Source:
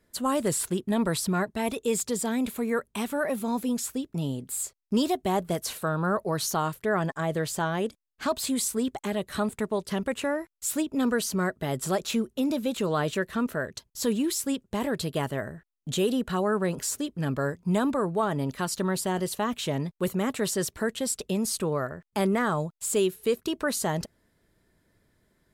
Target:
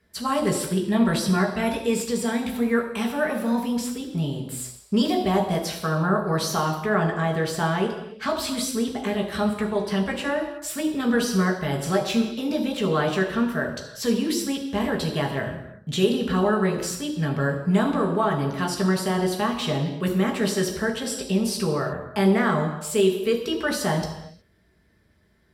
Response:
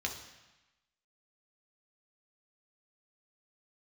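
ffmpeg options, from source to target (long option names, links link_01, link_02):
-filter_complex "[1:a]atrim=start_sample=2205,afade=type=out:start_time=0.36:duration=0.01,atrim=end_sample=16317,asetrate=36603,aresample=44100[link_01];[0:a][link_01]afir=irnorm=-1:irlink=0"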